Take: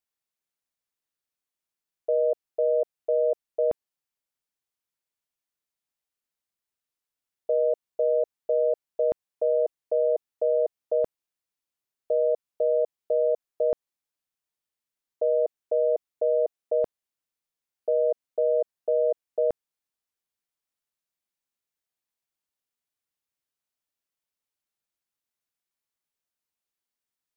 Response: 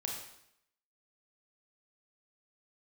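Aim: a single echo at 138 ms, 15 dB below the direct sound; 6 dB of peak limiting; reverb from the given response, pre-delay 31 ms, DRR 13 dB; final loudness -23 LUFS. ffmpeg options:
-filter_complex "[0:a]alimiter=limit=0.075:level=0:latency=1,aecho=1:1:138:0.178,asplit=2[s0][s1];[1:a]atrim=start_sample=2205,adelay=31[s2];[s1][s2]afir=irnorm=-1:irlink=0,volume=0.2[s3];[s0][s3]amix=inputs=2:normalize=0,volume=2.82"

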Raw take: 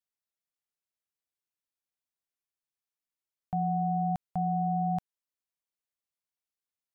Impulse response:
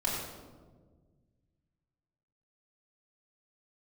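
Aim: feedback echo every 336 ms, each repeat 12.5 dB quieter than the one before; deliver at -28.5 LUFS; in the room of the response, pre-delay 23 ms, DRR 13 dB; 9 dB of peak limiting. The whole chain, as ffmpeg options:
-filter_complex "[0:a]alimiter=level_in=2.37:limit=0.0631:level=0:latency=1,volume=0.422,aecho=1:1:336|672|1008:0.237|0.0569|0.0137,asplit=2[s0][s1];[1:a]atrim=start_sample=2205,adelay=23[s2];[s1][s2]afir=irnorm=-1:irlink=0,volume=0.0944[s3];[s0][s3]amix=inputs=2:normalize=0,volume=3.55"

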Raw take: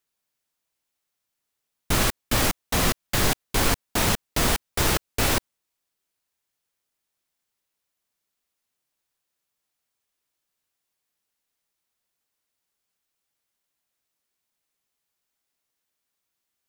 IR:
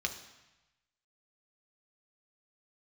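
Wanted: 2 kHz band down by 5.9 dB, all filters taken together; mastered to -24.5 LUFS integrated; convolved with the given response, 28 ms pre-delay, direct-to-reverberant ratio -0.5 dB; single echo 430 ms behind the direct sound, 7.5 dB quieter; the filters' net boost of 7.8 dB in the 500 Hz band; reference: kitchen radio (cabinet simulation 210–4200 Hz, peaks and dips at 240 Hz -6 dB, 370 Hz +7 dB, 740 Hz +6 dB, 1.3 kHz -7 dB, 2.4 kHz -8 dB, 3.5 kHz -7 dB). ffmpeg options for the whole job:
-filter_complex "[0:a]equalizer=f=500:t=o:g=6.5,equalizer=f=2000:t=o:g=-3,aecho=1:1:430:0.422,asplit=2[s0][s1];[1:a]atrim=start_sample=2205,adelay=28[s2];[s1][s2]afir=irnorm=-1:irlink=0,volume=0.708[s3];[s0][s3]amix=inputs=2:normalize=0,highpass=210,equalizer=f=240:t=q:w=4:g=-6,equalizer=f=370:t=q:w=4:g=7,equalizer=f=740:t=q:w=4:g=6,equalizer=f=1300:t=q:w=4:g=-7,equalizer=f=2400:t=q:w=4:g=-8,equalizer=f=3500:t=q:w=4:g=-7,lowpass=f=4200:w=0.5412,lowpass=f=4200:w=1.3066,volume=0.794"

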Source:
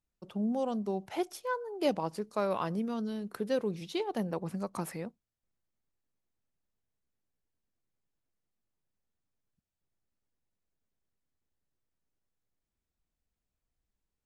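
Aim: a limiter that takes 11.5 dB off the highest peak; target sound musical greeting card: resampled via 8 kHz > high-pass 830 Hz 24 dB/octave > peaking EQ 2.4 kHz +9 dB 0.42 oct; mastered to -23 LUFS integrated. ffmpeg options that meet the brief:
-af "alimiter=level_in=1.68:limit=0.0631:level=0:latency=1,volume=0.596,aresample=8000,aresample=44100,highpass=f=830:w=0.5412,highpass=f=830:w=1.3066,equalizer=f=2400:t=o:w=0.42:g=9,volume=15.8"

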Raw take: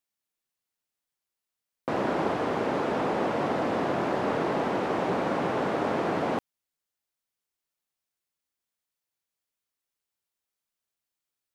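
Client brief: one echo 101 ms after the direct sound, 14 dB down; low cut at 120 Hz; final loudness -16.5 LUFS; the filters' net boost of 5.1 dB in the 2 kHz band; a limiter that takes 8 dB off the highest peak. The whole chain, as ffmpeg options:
-af "highpass=120,equalizer=f=2000:t=o:g=6.5,alimiter=limit=0.0794:level=0:latency=1,aecho=1:1:101:0.2,volume=5.01"

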